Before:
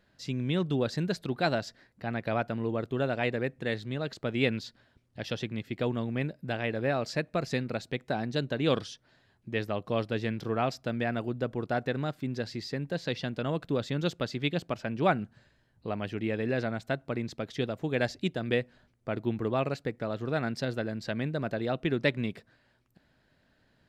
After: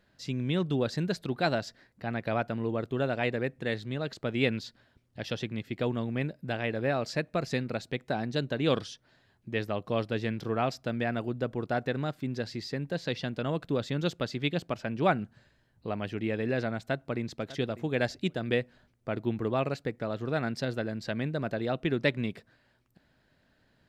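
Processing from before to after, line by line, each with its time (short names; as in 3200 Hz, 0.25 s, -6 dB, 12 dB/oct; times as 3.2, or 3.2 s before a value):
16.79–17.27 echo throw 0.6 s, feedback 15%, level -16.5 dB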